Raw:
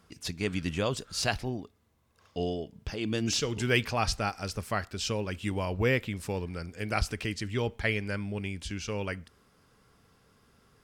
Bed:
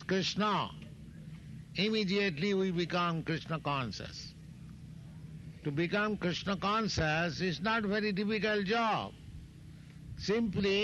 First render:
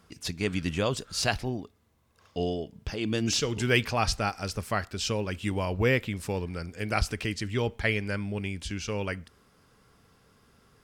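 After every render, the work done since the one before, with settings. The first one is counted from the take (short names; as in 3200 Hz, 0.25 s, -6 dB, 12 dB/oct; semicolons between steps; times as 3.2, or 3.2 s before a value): gain +2 dB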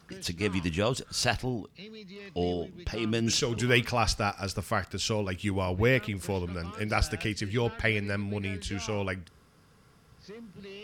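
add bed -14.5 dB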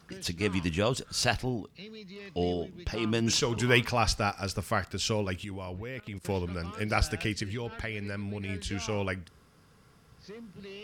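2.94–3.88 bell 970 Hz +8 dB 0.49 oct; 5.44–6.25 level quantiser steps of 19 dB; 7.43–8.49 compressor 4:1, threshold -32 dBFS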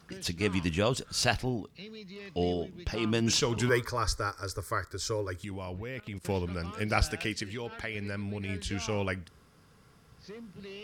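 3.69–5.44 fixed phaser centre 740 Hz, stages 6; 7.11–7.95 low shelf 140 Hz -10 dB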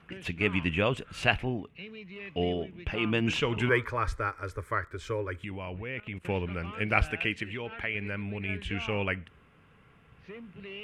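LPF 12000 Hz 12 dB/oct; resonant high shelf 3600 Hz -11 dB, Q 3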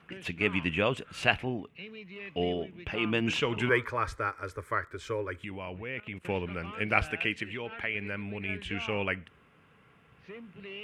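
HPF 140 Hz 6 dB/oct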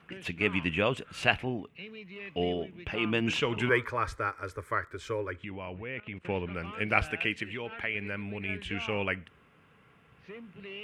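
5.31–6.55 air absorption 110 m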